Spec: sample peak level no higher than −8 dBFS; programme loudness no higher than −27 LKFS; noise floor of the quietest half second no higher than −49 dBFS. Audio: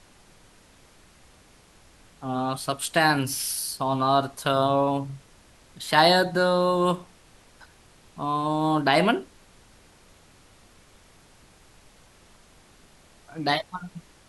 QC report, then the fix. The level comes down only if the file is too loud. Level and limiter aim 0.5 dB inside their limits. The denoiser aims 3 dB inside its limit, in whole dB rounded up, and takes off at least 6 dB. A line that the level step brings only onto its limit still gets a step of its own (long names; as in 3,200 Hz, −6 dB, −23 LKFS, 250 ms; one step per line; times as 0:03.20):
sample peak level −5.0 dBFS: out of spec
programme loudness −23.5 LKFS: out of spec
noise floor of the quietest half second −55 dBFS: in spec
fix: level −4 dB